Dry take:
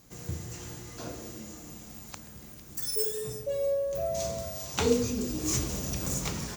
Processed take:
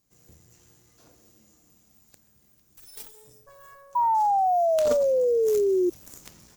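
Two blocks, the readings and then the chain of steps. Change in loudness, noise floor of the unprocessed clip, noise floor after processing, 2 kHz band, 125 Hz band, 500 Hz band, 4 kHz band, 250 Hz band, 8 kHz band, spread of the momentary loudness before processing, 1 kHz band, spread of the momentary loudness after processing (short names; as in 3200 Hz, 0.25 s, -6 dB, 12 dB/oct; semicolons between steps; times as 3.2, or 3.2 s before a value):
+8.5 dB, -48 dBFS, -62 dBFS, n/a, under -15 dB, +7.5 dB, -11.0 dB, -0.5 dB, -11.5 dB, 16 LU, +18.0 dB, 15 LU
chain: added harmonics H 3 -10 dB, 5 -29 dB, 6 -27 dB, 7 -25 dB, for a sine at -11.5 dBFS; high shelf 5400 Hz +6.5 dB; painted sound fall, 3.95–5.9, 350–980 Hz -19 dBFS; gain -2.5 dB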